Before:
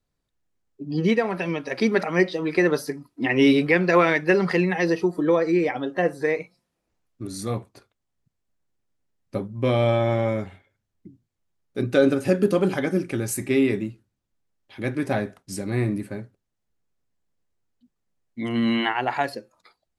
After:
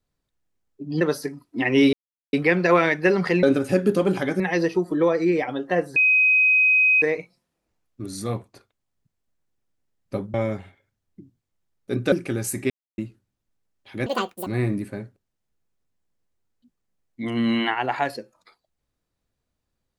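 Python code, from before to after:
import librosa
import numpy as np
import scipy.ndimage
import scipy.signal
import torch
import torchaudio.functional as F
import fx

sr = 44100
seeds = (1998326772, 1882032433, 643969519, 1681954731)

y = fx.edit(x, sr, fx.cut(start_s=1.01, length_s=1.64),
    fx.insert_silence(at_s=3.57, length_s=0.4),
    fx.insert_tone(at_s=6.23, length_s=1.06, hz=2520.0, db=-14.0),
    fx.cut(start_s=9.55, length_s=0.66),
    fx.move(start_s=11.99, length_s=0.97, to_s=4.67),
    fx.silence(start_s=13.54, length_s=0.28),
    fx.speed_span(start_s=14.9, length_s=0.75, speed=1.85), tone=tone)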